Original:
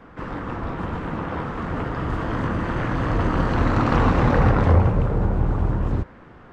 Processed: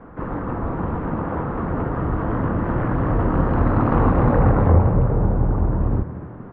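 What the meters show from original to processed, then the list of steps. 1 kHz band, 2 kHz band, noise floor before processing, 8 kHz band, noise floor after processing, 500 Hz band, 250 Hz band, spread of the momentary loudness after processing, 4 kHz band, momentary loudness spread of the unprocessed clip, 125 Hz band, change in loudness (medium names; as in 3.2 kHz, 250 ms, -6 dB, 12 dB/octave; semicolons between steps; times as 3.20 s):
+0.5 dB, -4.0 dB, -46 dBFS, no reading, -37 dBFS, +2.0 dB, +2.5 dB, 10 LU, under -10 dB, 11 LU, +2.0 dB, +1.5 dB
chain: low-pass 1.2 kHz 12 dB/octave; in parallel at -3 dB: compression, threshold -26 dBFS, peak gain reduction 14 dB; on the sum: frequency-shifting echo 234 ms, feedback 49%, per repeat +39 Hz, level -14 dB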